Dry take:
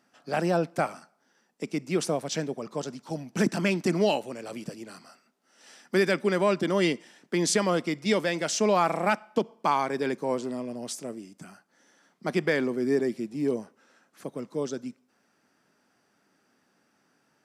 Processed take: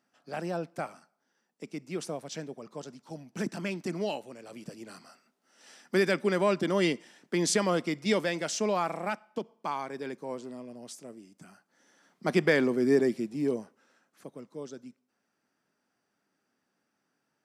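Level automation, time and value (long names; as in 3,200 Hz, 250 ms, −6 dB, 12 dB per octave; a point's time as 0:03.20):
0:04.49 −8.5 dB
0:04.91 −2 dB
0:08.18 −2 dB
0:09.25 −9 dB
0:11.13 −9 dB
0:12.34 +1.5 dB
0:13.05 +1.5 dB
0:14.51 −10 dB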